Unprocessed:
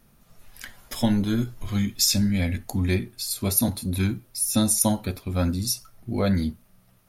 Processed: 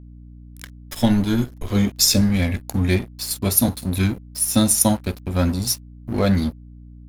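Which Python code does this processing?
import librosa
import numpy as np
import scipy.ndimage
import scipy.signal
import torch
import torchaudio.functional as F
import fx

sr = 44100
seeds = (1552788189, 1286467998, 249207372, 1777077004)

y = fx.peak_eq(x, sr, hz=450.0, db=13.0, octaves=0.85, at=(1.61, 2.21))
y = np.sign(y) * np.maximum(np.abs(y) - 10.0 ** (-37.0 / 20.0), 0.0)
y = fx.add_hum(y, sr, base_hz=60, snr_db=20)
y = F.gain(torch.from_numpy(y), 5.5).numpy()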